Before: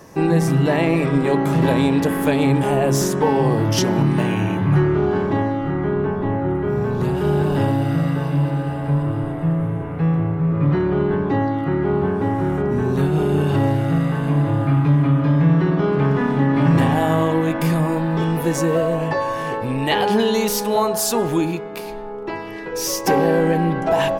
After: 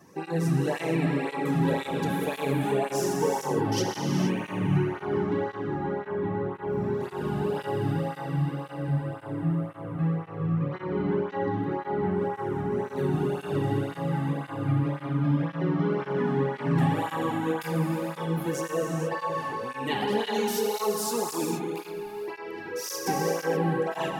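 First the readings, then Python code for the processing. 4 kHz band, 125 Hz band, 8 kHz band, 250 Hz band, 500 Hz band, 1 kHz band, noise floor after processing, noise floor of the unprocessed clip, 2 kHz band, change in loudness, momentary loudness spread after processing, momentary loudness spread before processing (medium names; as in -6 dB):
-8.5 dB, -10.5 dB, -8.5 dB, -10.0 dB, -8.5 dB, -8.0 dB, -41 dBFS, -29 dBFS, -8.5 dB, -9.5 dB, 5 LU, 6 LU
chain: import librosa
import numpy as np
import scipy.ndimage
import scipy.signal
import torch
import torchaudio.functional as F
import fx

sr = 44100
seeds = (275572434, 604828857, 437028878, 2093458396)

y = fx.notch(x, sr, hz=640.0, q=12.0)
y = fx.rev_gated(y, sr, seeds[0], gate_ms=500, shape='flat', drr_db=0.0)
y = fx.flanger_cancel(y, sr, hz=1.9, depth_ms=2.2)
y = y * librosa.db_to_amplitude(-8.5)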